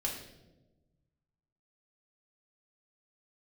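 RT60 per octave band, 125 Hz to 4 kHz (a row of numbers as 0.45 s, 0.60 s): 1.9 s, 1.6 s, 1.3 s, 0.85 s, 0.70 s, 0.70 s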